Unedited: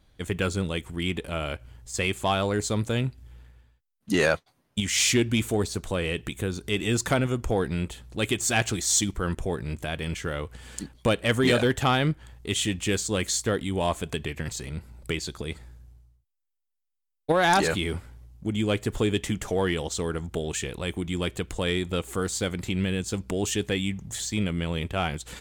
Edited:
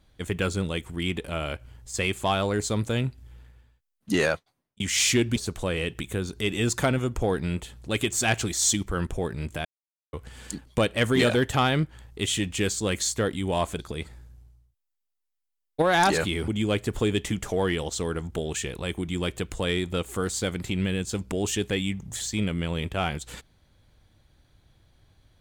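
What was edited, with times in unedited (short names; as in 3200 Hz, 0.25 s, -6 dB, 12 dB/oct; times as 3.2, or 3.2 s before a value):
4.14–4.8 fade out
5.36–5.64 cut
9.93–10.41 mute
14.07–15.29 cut
17.98–18.47 cut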